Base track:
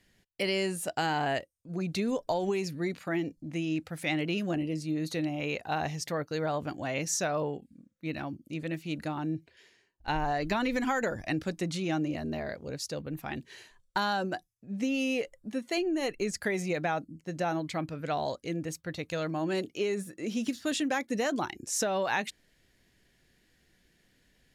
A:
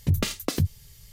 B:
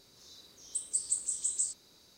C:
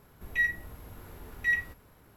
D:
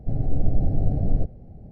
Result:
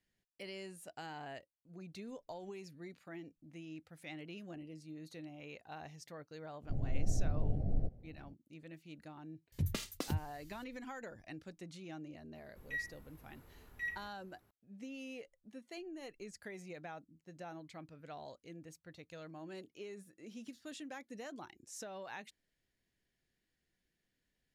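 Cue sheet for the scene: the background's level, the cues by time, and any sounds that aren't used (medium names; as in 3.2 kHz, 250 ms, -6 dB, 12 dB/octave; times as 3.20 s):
base track -17.5 dB
6.63 s: add D -12.5 dB
9.52 s: add A -12.5 dB
12.35 s: add C -13.5 dB
not used: B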